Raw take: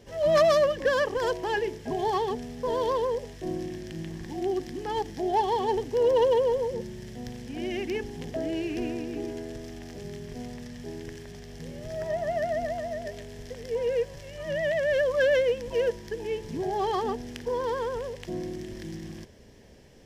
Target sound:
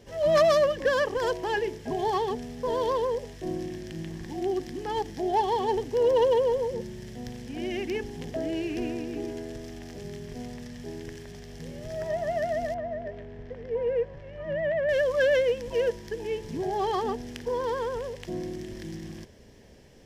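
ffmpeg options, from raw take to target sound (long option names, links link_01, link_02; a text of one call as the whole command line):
ffmpeg -i in.wav -filter_complex "[0:a]asettb=1/sr,asplit=3[link_01][link_02][link_03];[link_01]atrim=end=12.744[link_04];[link_02]atrim=start=12.74:end=14.89,asetpts=PTS-STARTPTS,afade=type=in:duration=0.004:curve=qsin,afade=type=out:start_time=2.146:duration=0.004:curve=qsin,lowpass=1800[link_05];[link_03]atrim=start=14.886[link_06];[link_04][link_05]acrossfade=duration=0.004:curve1=hsin:curve2=qsin[link_07];[link_07][link_06]acrossfade=duration=0.004:curve1=qsin:curve2=hsin" out.wav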